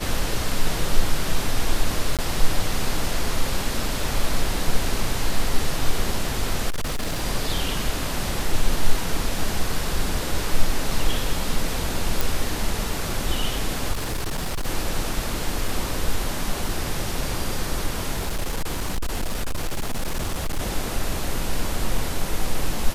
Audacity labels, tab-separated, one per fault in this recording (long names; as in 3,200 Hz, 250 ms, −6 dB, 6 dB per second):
2.170000	2.190000	drop-out 17 ms
6.700000	7.230000	clipping −21 dBFS
12.210000	12.210000	click
13.920000	14.670000	clipping −22 dBFS
15.680000	15.680000	drop-out 3.6 ms
18.150000	20.600000	clipping −20.5 dBFS